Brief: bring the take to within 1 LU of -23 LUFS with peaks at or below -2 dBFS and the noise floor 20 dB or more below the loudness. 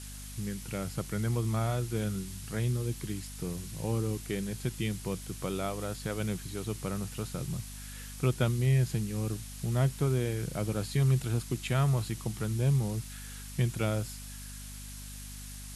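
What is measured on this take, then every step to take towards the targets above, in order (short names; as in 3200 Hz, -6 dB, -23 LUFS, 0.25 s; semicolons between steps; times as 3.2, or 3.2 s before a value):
hum 50 Hz; harmonics up to 250 Hz; hum level -43 dBFS; noise floor -43 dBFS; noise floor target -53 dBFS; loudness -32.5 LUFS; peak -14.5 dBFS; loudness target -23.0 LUFS
-> notches 50/100/150/200/250 Hz; noise print and reduce 10 dB; gain +9.5 dB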